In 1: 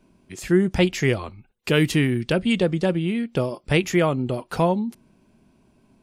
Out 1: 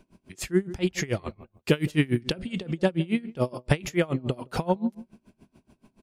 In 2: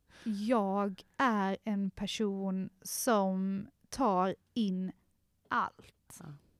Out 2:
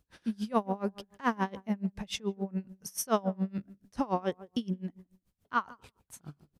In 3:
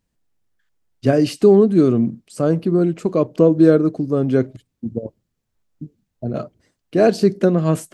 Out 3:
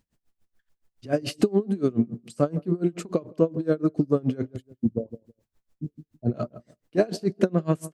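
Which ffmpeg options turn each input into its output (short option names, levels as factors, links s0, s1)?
-filter_complex "[0:a]acompressor=threshold=0.0891:ratio=4,asplit=2[s0][s1];[s1]adelay=164,lowpass=f=820:p=1,volume=0.158,asplit=2[s2][s3];[s3]adelay=164,lowpass=f=820:p=1,volume=0.23[s4];[s2][s4]amix=inputs=2:normalize=0[s5];[s0][s5]amix=inputs=2:normalize=0,aeval=exprs='val(0)*pow(10,-26*(0.5-0.5*cos(2*PI*7*n/s))/20)':c=same,volume=1.88"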